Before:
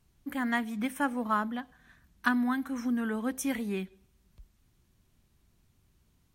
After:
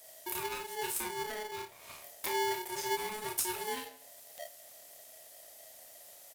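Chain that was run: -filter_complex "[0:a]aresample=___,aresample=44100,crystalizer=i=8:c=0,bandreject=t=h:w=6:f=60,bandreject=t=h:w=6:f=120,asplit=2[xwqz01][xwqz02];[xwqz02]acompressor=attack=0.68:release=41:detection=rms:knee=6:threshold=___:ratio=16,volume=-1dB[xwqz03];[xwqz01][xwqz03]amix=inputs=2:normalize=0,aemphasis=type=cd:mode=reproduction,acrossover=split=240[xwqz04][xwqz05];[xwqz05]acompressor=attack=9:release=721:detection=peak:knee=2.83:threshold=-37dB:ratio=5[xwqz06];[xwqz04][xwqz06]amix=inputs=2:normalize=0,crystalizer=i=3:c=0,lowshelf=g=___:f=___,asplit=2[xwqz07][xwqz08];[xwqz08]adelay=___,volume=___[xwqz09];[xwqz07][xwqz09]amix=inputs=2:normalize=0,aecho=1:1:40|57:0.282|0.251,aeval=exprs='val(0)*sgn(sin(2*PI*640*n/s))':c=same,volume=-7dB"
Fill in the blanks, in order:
32000, -39dB, 8, 86, 29, -5.5dB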